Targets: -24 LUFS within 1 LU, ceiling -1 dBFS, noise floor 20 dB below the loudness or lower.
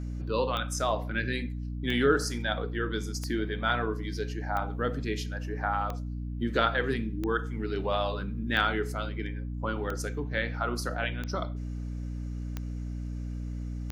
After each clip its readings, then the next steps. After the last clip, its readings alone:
clicks 11; hum 60 Hz; harmonics up to 300 Hz; hum level -32 dBFS; loudness -31.5 LUFS; peak -10.0 dBFS; loudness target -24.0 LUFS
-> de-click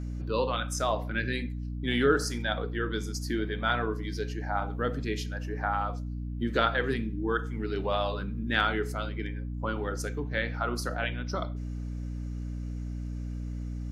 clicks 0; hum 60 Hz; harmonics up to 300 Hz; hum level -32 dBFS
-> de-hum 60 Hz, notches 5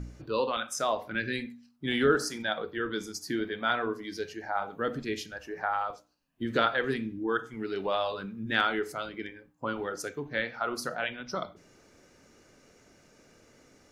hum none; loudness -31.5 LUFS; peak -10.0 dBFS; loudness target -24.0 LUFS
-> gain +7.5 dB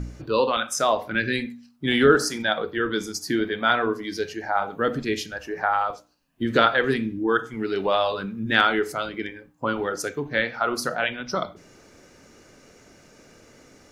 loudness -24.0 LUFS; peak -2.5 dBFS; noise floor -54 dBFS

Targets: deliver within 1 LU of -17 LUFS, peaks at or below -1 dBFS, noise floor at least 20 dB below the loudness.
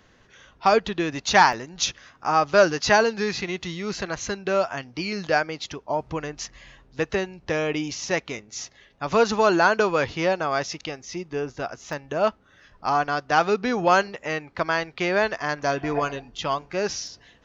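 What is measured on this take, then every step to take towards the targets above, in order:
dropouts 3; longest dropout 1.2 ms; loudness -24.0 LUFS; peak -4.5 dBFS; loudness target -17.0 LUFS
-> interpolate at 1.53/11.93/17.07, 1.2 ms; gain +7 dB; limiter -1 dBFS

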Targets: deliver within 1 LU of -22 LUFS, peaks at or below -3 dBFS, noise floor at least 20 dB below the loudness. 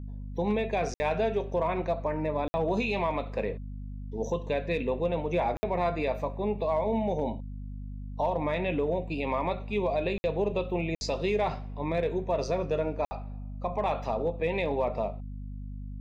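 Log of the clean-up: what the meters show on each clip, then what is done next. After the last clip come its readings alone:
dropouts 6; longest dropout 60 ms; hum 50 Hz; harmonics up to 250 Hz; hum level -36 dBFS; loudness -30.0 LUFS; peak -18.0 dBFS; loudness target -22.0 LUFS
-> interpolate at 0.94/2.48/5.57/10.18/10.95/13.05, 60 ms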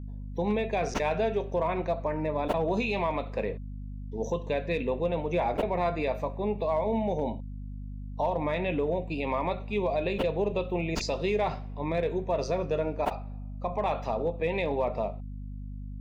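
dropouts 0; hum 50 Hz; harmonics up to 250 Hz; hum level -36 dBFS
-> notches 50/100/150/200/250 Hz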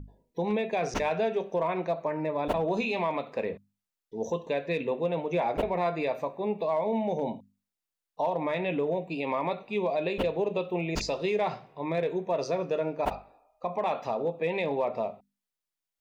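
hum none; loudness -30.5 LUFS; peak -15.0 dBFS; loudness target -22.0 LUFS
-> gain +8.5 dB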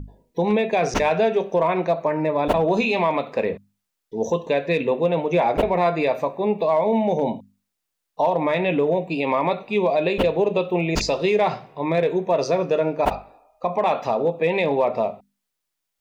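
loudness -22.0 LUFS; peak -6.5 dBFS; noise floor -80 dBFS

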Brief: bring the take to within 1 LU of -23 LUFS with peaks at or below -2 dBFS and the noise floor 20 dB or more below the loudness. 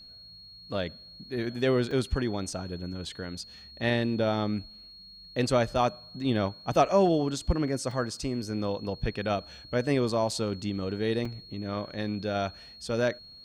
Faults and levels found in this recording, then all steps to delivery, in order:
dropouts 4; longest dropout 3.3 ms; steady tone 4300 Hz; tone level -47 dBFS; loudness -29.5 LUFS; peak -10.0 dBFS; loudness target -23.0 LUFS
-> interpolate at 1.91/7.91/10.31/11.25, 3.3 ms; notch 4300 Hz, Q 30; gain +6.5 dB

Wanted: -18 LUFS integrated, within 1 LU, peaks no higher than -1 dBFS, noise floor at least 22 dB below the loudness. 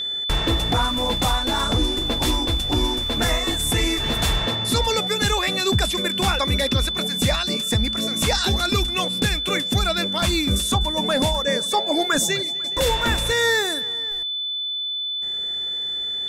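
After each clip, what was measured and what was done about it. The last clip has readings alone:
steady tone 3500 Hz; tone level -24 dBFS; loudness -21.0 LUFS; peak -10.0 dBFS; loudness target -18.0 LUFS
-> notch 3500 Hz, Q 30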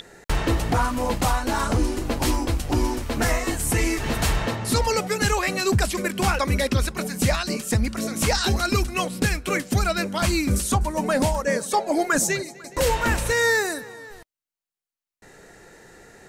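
steady tone none; loudness -23.5 LUFS; peak -11.5 dBFS; loudness target -18.0 LUFS
-> gain +5.5 dB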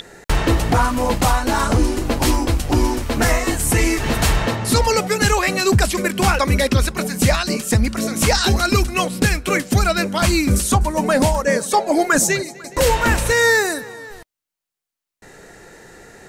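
loudness -18.0 LUFS; peak -6.0 dBFS; noise floor -85 dBFS

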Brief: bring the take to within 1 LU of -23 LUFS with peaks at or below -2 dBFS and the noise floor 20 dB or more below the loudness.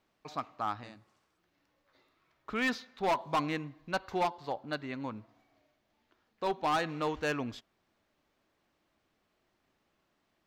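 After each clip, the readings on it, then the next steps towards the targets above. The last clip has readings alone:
clipped 1.0%; flat tops at -24.5 dBFS; loudness -34.5 LUFS; peak -24.5 dBFS; loudness target -23.0 LUFS
-> clip repair -24.5 dBFS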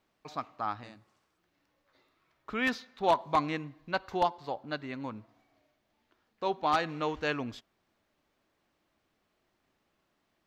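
clipped 0.0%; loudness -32.5 LUFS; peak -15.5 dBFS; loudness target -23.0 LUFS
-> gain +9.5 dB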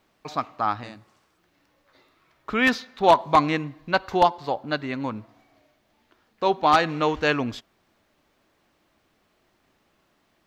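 loudness -23.5 LUFS; peak -6.0 dBFS; noise floor -68 dBFS

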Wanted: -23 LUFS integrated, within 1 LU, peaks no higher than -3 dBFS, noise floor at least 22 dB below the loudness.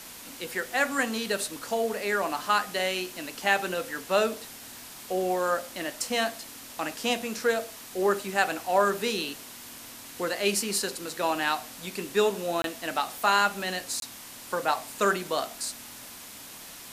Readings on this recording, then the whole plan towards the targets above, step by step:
dropouts 2; longest dropout 22 ms; noise floor -45 dBFS; noise floor target -50 dBFS; loudness -28.0 LUFS; peak -9.0 dBFS; loudness target -23.0 LUFS
-> interpolate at 12.62/14, 22 ms; noise print and reduce 6 dB; gain +5 dB

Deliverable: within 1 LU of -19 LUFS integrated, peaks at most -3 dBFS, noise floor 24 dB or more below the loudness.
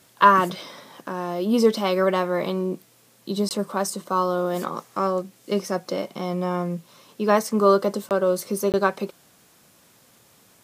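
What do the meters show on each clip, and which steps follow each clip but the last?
dropouts 3; longest dropout 18 ms; loudness -23.5 LUFS; peak -4.0 dBFS; loudness target -19.0 LUFS
-> interpolate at 3.49/8.09/8.72, 18 ms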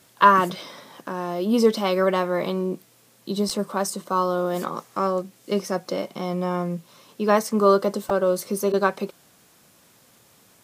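dropouts 0; loudness -23.5 LUFS; peak -4.0 dBFS; loudness target -19.0 LUFS
-> gain +4.5 dB; limiter -3 dBFS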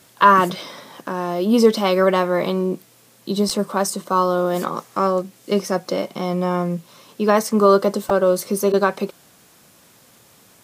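loudness -19.5 LUFS; peak -3.0 dBFS; noise floor -52 dBFS

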